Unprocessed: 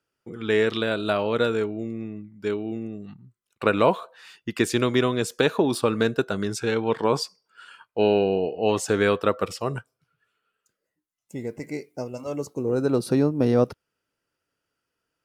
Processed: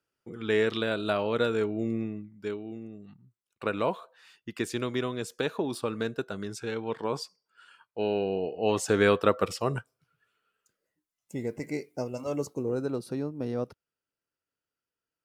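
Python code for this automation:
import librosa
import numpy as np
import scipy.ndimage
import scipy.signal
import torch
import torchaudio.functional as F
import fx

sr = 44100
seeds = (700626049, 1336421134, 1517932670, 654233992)

y = fx.gain(x, sr, db=fx.line((1.51, -4.0), (1.94, 2.5), (2.6, -9.0), (8.04, -9.0), (9.06, -1.0), (12.45, -1.0), (13.07, -12.0)))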